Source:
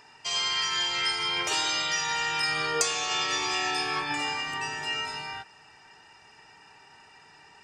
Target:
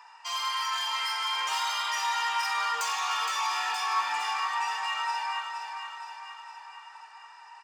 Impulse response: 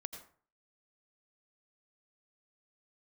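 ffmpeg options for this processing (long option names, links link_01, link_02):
-filter_complex "[0:a]flanger=delay=7.8:depth=8.5:regen=-35:speed=0.46:shape=triangular,asoftclip=type=tanh:threshold=-29.5dB,highpass=frequency=1000:width_type=q:width=4.9,asplit=2[link_01][link_02];[link_02]aecho=0:1:466|932|1398|1864|2330|2796|3262:0.447|0.255|0.145|0.0827|0.0472|0.0269|0.0153[link_03];[link_01][link_03]amix=inputs=2:normalize=0"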